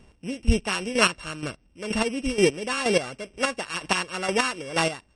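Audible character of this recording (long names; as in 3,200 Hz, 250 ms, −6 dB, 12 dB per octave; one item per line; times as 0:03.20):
a buzz of ramps at a fixed pitch in blocks of 16 samples
chopped level 2.1 Hz, depth 65%, duty 25%
MP3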